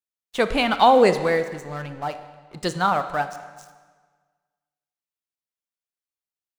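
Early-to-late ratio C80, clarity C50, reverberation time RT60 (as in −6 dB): 12.5 dB, 11.0 dB, 1.5 s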